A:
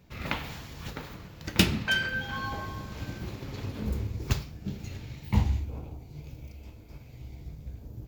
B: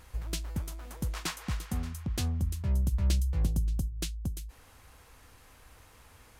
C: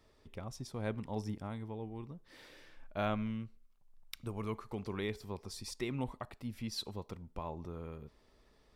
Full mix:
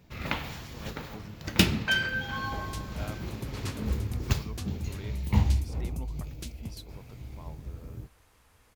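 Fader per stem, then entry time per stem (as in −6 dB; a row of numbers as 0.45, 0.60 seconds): +0.5, −6.5, −8.0 decibels; 0.00, 2.40, 0.00 seconds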